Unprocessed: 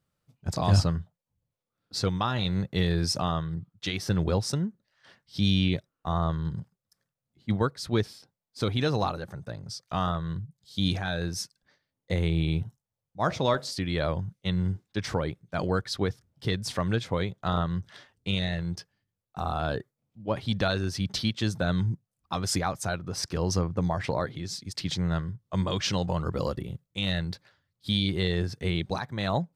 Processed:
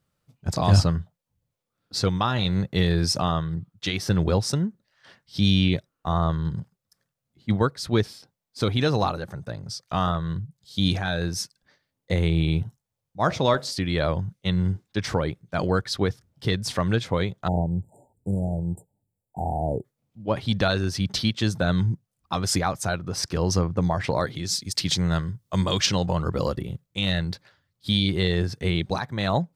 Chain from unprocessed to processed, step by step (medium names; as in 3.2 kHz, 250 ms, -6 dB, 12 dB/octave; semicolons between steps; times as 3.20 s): 17.48–19.85 s: spectral selection erased 930–7000 Hz; 24.15–25.86 s: treble shelf 3.9 kHz +9.5 dB; trim +4 dB